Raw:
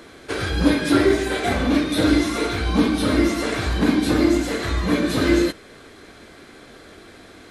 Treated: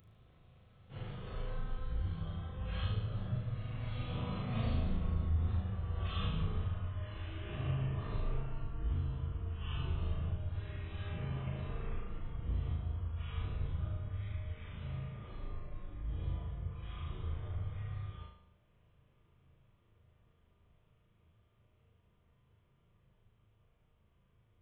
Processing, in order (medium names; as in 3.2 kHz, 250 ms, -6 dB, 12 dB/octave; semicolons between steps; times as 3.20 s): Doppler pass-by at 2.00 s, 14 m/s, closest 2.5 m; tilt shelf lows +8 dB, about 840 Hz; compression 16:1, threshold -30 dBFS, peak gain reduction 23.5 dB; wide varispeed 0.305×; pre-emphasis filter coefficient 0.9; on a send: flutter echo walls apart 6.4 m, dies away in 0.63 s; on the sum: trim +17 dB